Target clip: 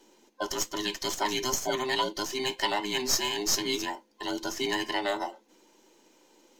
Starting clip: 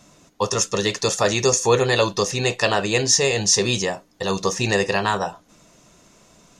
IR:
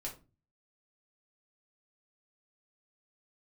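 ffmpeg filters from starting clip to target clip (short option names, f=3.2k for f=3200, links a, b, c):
-filter_complex "[0:a]afftfilt=real='real(if(between(b,1,1008),(2*floor((b-1)/24)+1)*24-b,b),0)':imag='imag(if(between(b,1,1008),(2*floor((b-1)/24)+1)*24-b,b),0)*if(between(b,1,1008),-1,1)':win_size=2048:overlap=0.75,highpass=f=240:w=0.5412,highpass=f=240:w=1.3066,equalizer=f=1.3k:w=2.5:g=-9.5,acrossover=split=350|4900[a][b][c];[c]aeval=exprs='max(val(0),0)':c=same[d];[a][b][d]amix=inputs=3:normalize=0,volume=-6dB"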